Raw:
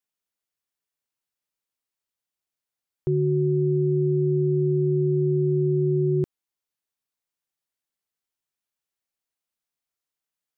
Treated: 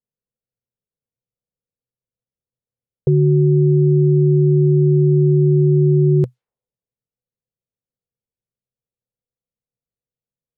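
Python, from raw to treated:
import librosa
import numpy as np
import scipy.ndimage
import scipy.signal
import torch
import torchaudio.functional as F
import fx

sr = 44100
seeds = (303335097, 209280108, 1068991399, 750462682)

y = fx.env_lowpass(x, sr, base_hz=320.0, full_db=-23.0)
y = fx.graphic_eq_31(y, sr, hz=(125, 315, 500), db=(9, -10, 10))
y = F.gain(torch.from_numpy(y), 7.5).numpy()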